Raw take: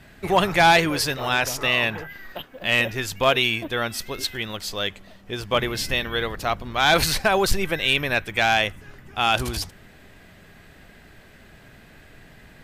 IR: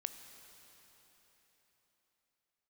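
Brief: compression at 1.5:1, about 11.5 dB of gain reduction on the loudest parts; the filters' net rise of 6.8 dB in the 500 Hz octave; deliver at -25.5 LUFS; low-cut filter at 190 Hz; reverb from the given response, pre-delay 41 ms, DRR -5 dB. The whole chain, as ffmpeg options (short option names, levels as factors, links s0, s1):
-filter_complex "[0:a]highpass=190,equalizer=f=500:t=o:g=9,acompressor=threshold=0.00794:ratio=1.5,asplit=2[s0][s1];[1:a]atrim=start_sample=2205,adelay=41[s2];[s1][s2]afir=irnorm=-1:irlink=0,volume=2.24[s3];[s0][s3]amix=inputs=2:normalize=0,volume=0.794"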